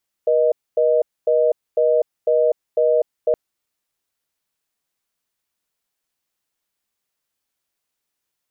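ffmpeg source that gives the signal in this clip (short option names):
-f lavfi -i "aevalsrc='0.158*(sin(2*PI*480*t)+sin(2*PI*620*t))*clip(min(mod(t,0.5),0.25-mod(t,0.5))/0.005,0,1)':d=3.07:s=44100"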